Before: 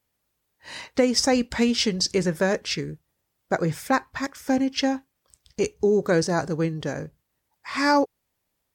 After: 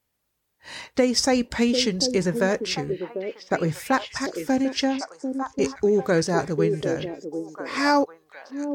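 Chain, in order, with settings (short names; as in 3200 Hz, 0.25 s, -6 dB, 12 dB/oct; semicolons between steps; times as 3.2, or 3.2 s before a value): 4.84–5.61 LPF 4000 Hz 6 dB/oct; on a send: delay with a stepping band-pass 0.745 s, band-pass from 370 Hz, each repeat 1.4 oct, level -3.5 dB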